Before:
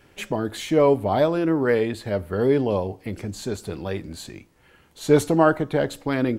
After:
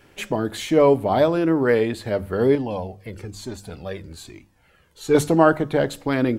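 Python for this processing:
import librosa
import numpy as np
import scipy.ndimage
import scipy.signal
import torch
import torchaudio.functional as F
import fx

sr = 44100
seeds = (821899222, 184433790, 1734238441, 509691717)

y = fx.hum_notches(x, sr, base_hz=50, count=4)
y = fx.comb_cascade(y, sr, direction='falling', hz=1.1, at=(2.55, 5.15))
y = y * librosa.db_to_amplitude(2.0)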